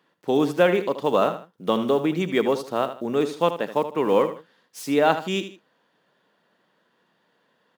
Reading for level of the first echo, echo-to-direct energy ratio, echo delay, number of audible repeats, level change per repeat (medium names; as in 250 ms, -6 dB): -11.0 dB, -10.5 dB, 77 ms, 2, -10.0 dB